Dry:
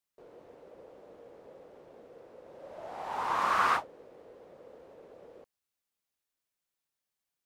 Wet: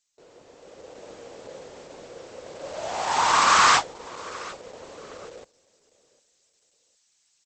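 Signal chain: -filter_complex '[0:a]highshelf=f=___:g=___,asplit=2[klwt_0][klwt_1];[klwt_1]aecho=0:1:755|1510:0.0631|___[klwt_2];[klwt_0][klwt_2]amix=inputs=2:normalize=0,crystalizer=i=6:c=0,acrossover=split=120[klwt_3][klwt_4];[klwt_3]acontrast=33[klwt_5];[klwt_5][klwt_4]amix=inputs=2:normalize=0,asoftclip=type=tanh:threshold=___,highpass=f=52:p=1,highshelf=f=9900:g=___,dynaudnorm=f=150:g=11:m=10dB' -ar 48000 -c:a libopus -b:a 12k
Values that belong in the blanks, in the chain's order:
4000, 5, 0.0177, -20.5dB, -2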